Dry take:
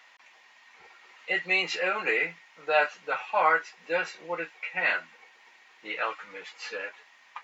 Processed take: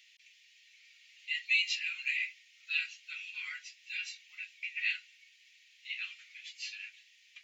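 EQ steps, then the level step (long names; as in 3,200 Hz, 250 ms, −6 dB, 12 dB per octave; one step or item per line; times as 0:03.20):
Butterworth high-pass 2,400 Hz 36 dB per octave
0.0 dB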